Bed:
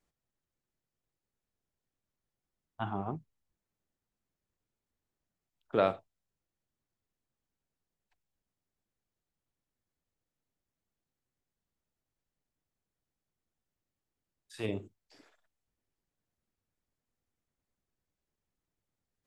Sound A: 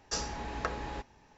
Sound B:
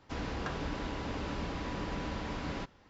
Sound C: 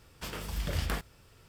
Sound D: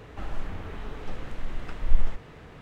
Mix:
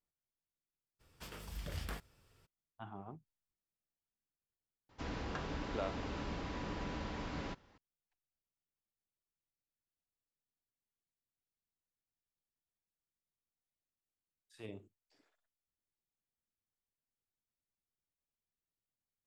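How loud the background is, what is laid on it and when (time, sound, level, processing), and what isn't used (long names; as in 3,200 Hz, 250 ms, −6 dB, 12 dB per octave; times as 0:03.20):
bed −13 dB
0:00.99: mix in C −10.5 dB, fades 0.02 s
0:04.89: mix in B −4.5 dB
not used: A, D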